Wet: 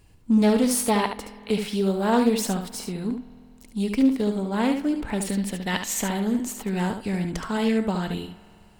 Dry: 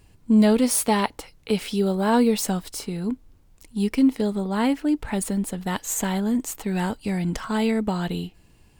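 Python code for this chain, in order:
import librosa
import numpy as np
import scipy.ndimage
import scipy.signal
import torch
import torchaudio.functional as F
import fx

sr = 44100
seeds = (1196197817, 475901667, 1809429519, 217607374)

p1 = fx.spec_box(x, sr, start_s=5.23, length_s=0.8, low_hz=1700.0, high_hz=6000.0, gain_db=7)
p2 = p1 + fx.echo_single(p1, sr, ms=72, db=-7.0, dry=0)
p3 = fx.rev_spring(p2, sr, rt60_s=2.7, pass_ms=(48,), chirp_ms=25, drr_db=17.0)
p4 = fx.doppler_dist(p3, sr, depth_ms=0.18)
y = p4 * 10.0 ** (-1.5 / 20.0)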